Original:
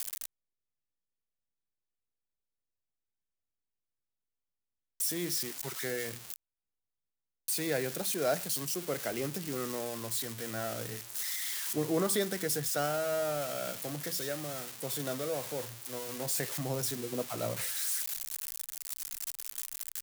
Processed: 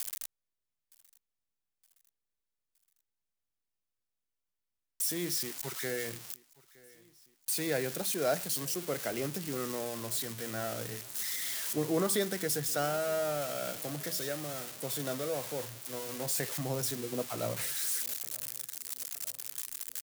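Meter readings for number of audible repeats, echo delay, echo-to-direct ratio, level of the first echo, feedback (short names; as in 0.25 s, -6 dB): 2, 0.917 s, -22.5 dB, -23.5 dB, 51%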